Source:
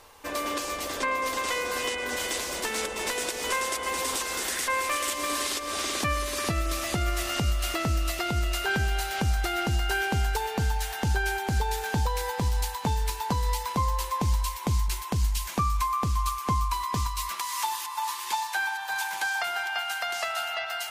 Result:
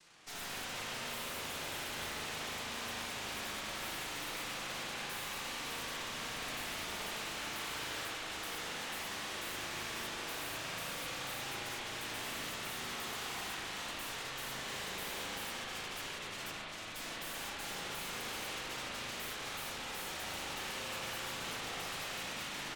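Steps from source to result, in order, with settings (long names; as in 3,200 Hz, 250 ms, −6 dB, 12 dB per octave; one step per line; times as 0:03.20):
running median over 25 samples
high-pass filter 280 Hz 12 dB per octave
comb filter 5.5 ms, depth 51%
in parallel at −3 dB: dead-zone distortion −45 dBFS
on the sum: cochlear-implant simulation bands 1
wrap-around overflow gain 24.5 dB
flanger 0.2 Hz, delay 5.2 ms, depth 9.8 ms, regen −40%
tube saturation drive 47 dB, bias 0.8
wrong playback speed 48 kHz file played as 44.1 kHz
spring reverb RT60 3.4 s, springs 38/59 ms, chirp 35 ms, DRR −7 dB
level +2.5 dB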